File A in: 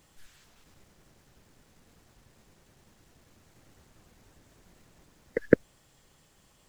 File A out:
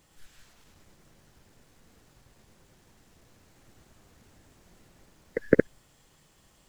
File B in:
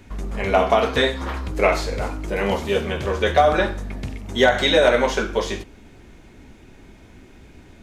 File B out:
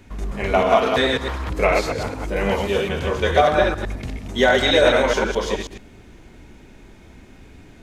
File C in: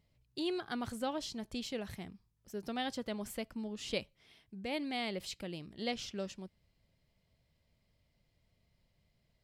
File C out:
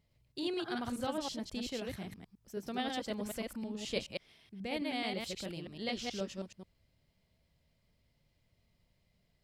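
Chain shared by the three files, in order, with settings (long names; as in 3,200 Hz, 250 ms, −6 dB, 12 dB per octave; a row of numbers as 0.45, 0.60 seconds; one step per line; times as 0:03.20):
delay that plays each chunk backwards 107 ms, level −2 dB
level −1 dB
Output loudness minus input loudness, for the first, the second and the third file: +1.0, +0.5, +1.0 LU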